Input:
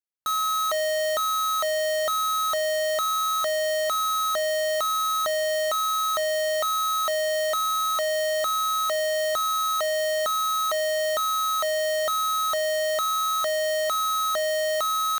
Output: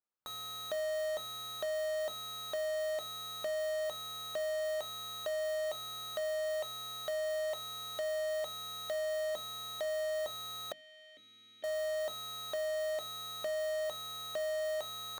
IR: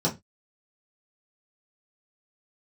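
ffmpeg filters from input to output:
-filter_complex "[0:a]equalizer=frequency=1200:width_type=o:width=0.74:gain=6.5,aeval=exprs='(mod(15.8*val(0)+1,2)-1)/15.8':channel_layout=same,asplit=2[link_01][link_02];[1:a]atrim=start_sample=2205,asetrate=52920,aresample=44100[link_03];[link_02][link_03]afir=irnorm=-1:irlink=0,volume=-22.5dB[link_04];[link_01][link_04]amix=inputs=2:normalize=0,alimiter=level_in=3.5dB:limit=-24dB:level=0:latency=1,volume=-3.5dB,asettb=1/sr,asplit=3[link_05][link_06][link_07];[link_05]atrim=end=10.724[link_08];[link_06]atrim=start=10.72:end=11.64,asetpts=PTS-STARTPTS,afade=type=in:duration=0.004:curve=qsin,afade=type=out:start_time=0.916:duration=0.004:curve=qsin,asplit=3[link_09][link_10][link_11];[link_09]bandpass=frequency=270:width_type=q:width=8,volume=0dB[link_12];[link_10]bandpass=frequency=2290:width_type=q:width=8,volume=-6dB[link_13];[link_11]bandpass=frequency=3010:width_type=q:width=8,volume=-9dB[link_14];[link_12][link_13][link_14]amix=inputs=3:normalize=0[link_15];[link_07]atrim=start=11.636[link_16];[link_08][link_15]acrossfade=duration=0.004:curve1=hsin:curve2=qsin[link_17];[link_17][link_16]acrossfade=duration=0.004:curve1=qsin:curve2=hsin,asoftclip=type=tanh:threshold=-31dB,highshelf=frequency=2200:gain=-11.5,bandreject=frequency=50:width_type=h:width=6,bandreject=frequency=100:width_type=h:width=6,bandreject=frequency=150:width_type=h:width=6,bandreject=frequency=200:width_type=h:width=6,bandreject=frequency=250:width_type=h:width=6,volume=2dB"

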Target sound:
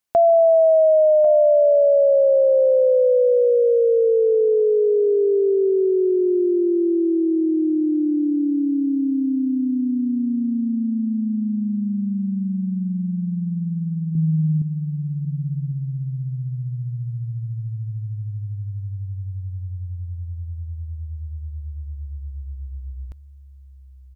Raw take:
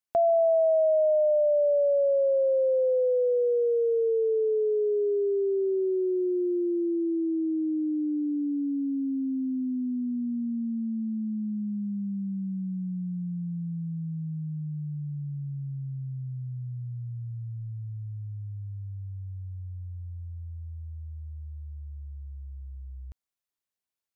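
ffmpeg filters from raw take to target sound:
ffmpeg -i in.wav -filter_complex "[0:a]asettb=1/sr,asplit=3[link_01][link_02][link_03];[link_01]atrim=end=14.154[link_04];[link_02]atrim=start=14.15:end=14.62,asetpts=PTS-STARTPTS,afade=type=in:duration=0.004:curve=qsin,afade=type=out:start_time=0.466:duration=0.004:curve=qsin,equalizer=frequency=350:width=0.31:gain=8.5[link_05];[link_03]atrim=start=14.616[link_06];[link_04][link_05]acrossfade=duration=0.004:curve1=hsin:curve2=qsin[link_07];[link_07][link_06]acrossfade=duration=0.004:curve1=qsin:curve2=hsin,aecho=1:1:1095:0.237,volume=8dB" out.wav

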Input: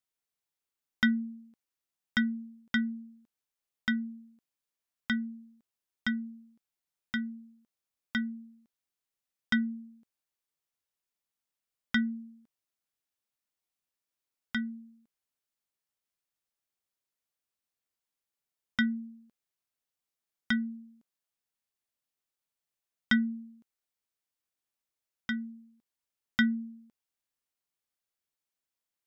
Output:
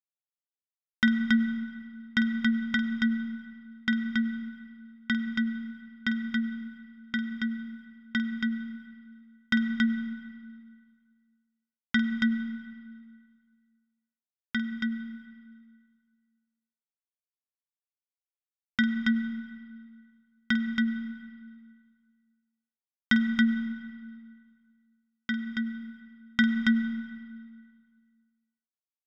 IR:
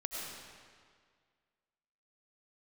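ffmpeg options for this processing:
-filter_complex "[0:a]agate=range=-33dB:threshold=-54dB:ratio=3:detection=peak,aecho=1:1:49.56|277:0.282|0.708,asplit=2[link_01][link_02];[1:a]atrim=start_sample=2205,highshelf=frequency=3000:gain=-10.5[link_03];[link_02][link_03]afir=irnorm=-1:irlink=0,volume=-5.5dB[link_04];[link_01][link_04]amix=inputs=2:normalize=0"

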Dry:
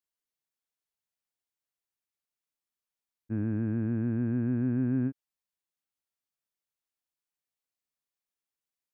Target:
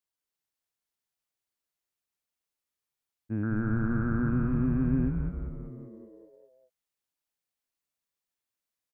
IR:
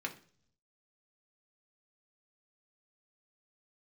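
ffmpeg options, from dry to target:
-filter_complex "[0:a]asettb=1/sr,asplit=3[link_01][link_02][link_03];[link_01]atrim=end=3.434[link_04];[link_02]atrim=start=3.43:end=4.29,asetpts=PTS-STARTPTS,afade=type=in:duration=0.004:curve=qsin,afade=type=out:start_time=0.856:duration=0.004:curve=qsin,lowpass=frequency=1400:width_type=q:width=10[link_05];[link_03]atrim=start=4.286[link_06];[link_04][link_05]acrossfade=duration=0.004:curve1=hsin:curve2=qsin[link_07];[link_07][link_06]acrossfade=duration=0.004:curve1=qsin:curve2=hsin,asplit=9[link_08][link_09][link_10][link_11][link_12][link_13][link_14][link_15][link_16];[link_09]adelay=197,afreqshift=-97,volume=-4dB[link_17];[link_10]adelay=394,afreqshift=-194,volume=-8.6dB[link_18];[link_11]adelay=591,afreqshift=-291,volume=-13.2dB[link_19];[link_12]adelay=788,afreqshift=-388,volume=-17.7dB[link_20];[link_13]adelay=985,afreqshift=-485,volume=-22.3dB[link_21];[link_14]adelay=1182,afreqshift=-582,volume=-26.9dB[link_22];[link_15]adelay=1379,afreqshift=-679,volume=-31.5dB[link_23];[link_16]adelay=1576,afreqshift=-776,volume=-36.1dB[link_24];[link_08][link_17][link_18][link_19][link_20][link_21][link_22][link_23][link_24]amix=inputs=9:normalize=0"

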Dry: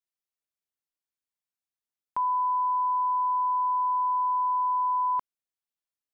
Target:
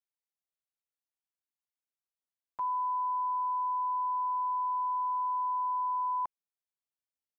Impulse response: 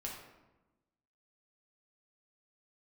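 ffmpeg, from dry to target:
-af "atempo=0.83,equalizer=frequency=820:width_type=o:width=0.77:gain=4.5,volume=-8.5dB"

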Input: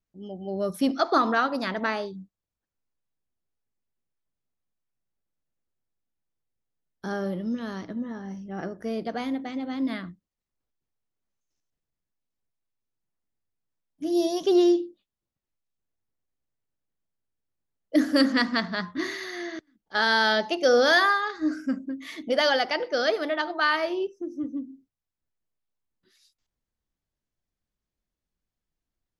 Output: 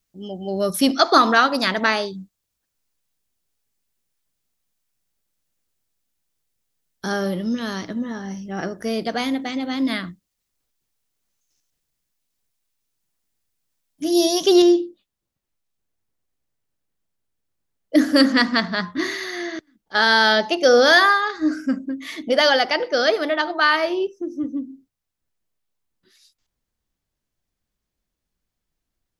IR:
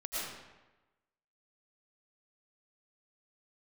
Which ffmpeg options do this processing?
-af "asetnsamples=nb_out_samples=441:pad=0,asendcmd='14.62 highshelf g 2',highshelf=frequency=2300:gain=11,volume=5.5dB"

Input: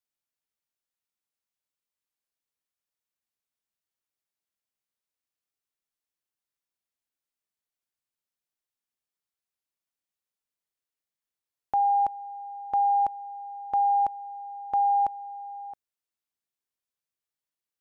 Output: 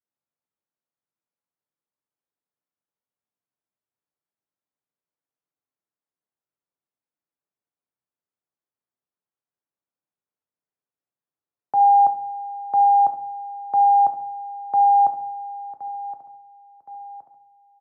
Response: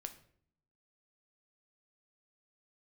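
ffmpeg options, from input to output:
-filter_complex "[0:a]highpass=frequency=94:width=0.5412,highpass=frequency=94:width=1.3066[link_01];[1:a]atrim=start_sample=2205,afade=type=out:start_time=0.43:duration=0.01,atrim=end_sample=19404[link_02];[link_01][link_02]afir=irnorm=-1:irlink=0,adynamicequalizer=threshold=0.0126:dfrequency=770:dqfactor=3:tfrequency=770:tqfactor=3:attack=5:release=100:ratio=0.375:range=2.5:mode=boostabove:tftype=bell,lowpass=1200,aecho=1:1:1069|2138|3207|4276:0.188|0.0904|0.0434|0.0208,acrossover=split=240|610[link_03][link_04][link_05];[link_03]acrusher=bits=4:mode=log:mix=0:aa=0.000001[link_06];[link_06][link_04][link_05]amix=inputs=3:normalize=0,volume=7dB"

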